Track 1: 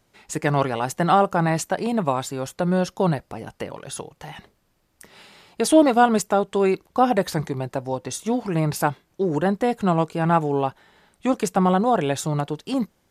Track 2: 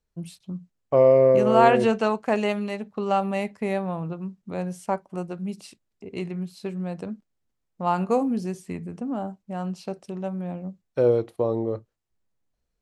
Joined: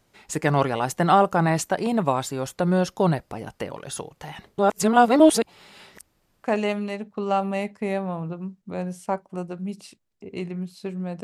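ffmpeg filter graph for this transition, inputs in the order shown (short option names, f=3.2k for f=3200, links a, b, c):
-filter_complex "[0:a]apad=whole_dur=11.23,atrim=end=11.23,asplit=2[a][b];[a]atrim=end=4.582[c];[b]atrim=start=4.578:end=6.442,asetpts=PTS-STARTPTS,areverse[d];[1:a]atrim=start=2.238:end=7.03[e];[c][d]acrossfade=d=0.004:c1=hsin:c2=hsin[f];[f][e]acrossfade=d=0.004:c1=hsin:c2=hsin"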